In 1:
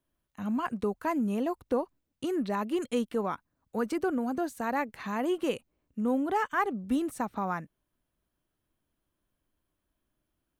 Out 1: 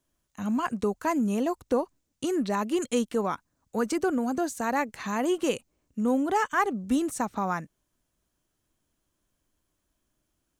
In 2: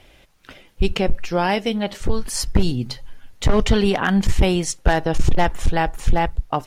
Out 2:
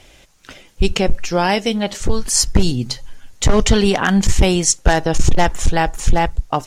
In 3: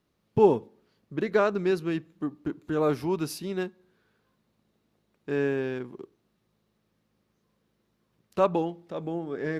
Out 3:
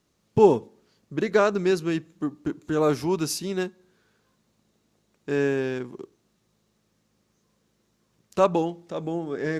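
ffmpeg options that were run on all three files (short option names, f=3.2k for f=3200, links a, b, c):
-af "equalizer=f=6.8k:t=o:w=0.94:g=10,volume=3dB"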